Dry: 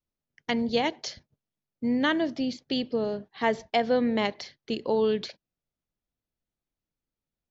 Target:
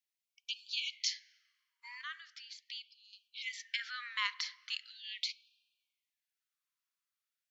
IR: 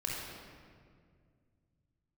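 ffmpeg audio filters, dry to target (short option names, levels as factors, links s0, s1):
-filter_complex "[0:a]alimiter=limit=0.0891:level=0:latency=1:release=12,asettb=1/sr,asplit=3[s0][s1][s2];[s0]atrim=end=2.014[s3];[s1]atrim=start=2.01:end=3.13,asetpts=PTS-STARTPTS,afade=t=in:d=0.004:c=qsin,afade=t=out:st=1.116:d=0.004:c=qsin,acompressor=threshold=0.0126:ratio=6[s4];[s2]atrim=start=3.126[s5];[s3][s4]acrossfade=d=0.004:c1=hsin:c2=qsin[s6];[s6][s5]acrossfade=d=0.004:c1=qsin:c2=hsin,asplit=2[s7][s8];[1:a]atrim=start_sample=2205,asetrate=52920,aresample=44100,highshelf=f=4000:g=-12[s9];[s8][s9]afir=irnorm=-1:irlink=0,volume=0.133[s10];[s7][s10]amix=inputs=2:normalize=0,afftfilt=real='re*gte(b*sr/1024,930*pow(2400/930,0.5+0.5*sin(2*PI*0.4*pts/sr)))':imag='im*gte(b*sr/1024,930*pow(2400/930,0.5+0.5*sin(2*PI*0.4*pts/sr)))':win_size=1024:overlap=0.75,volume=1.26"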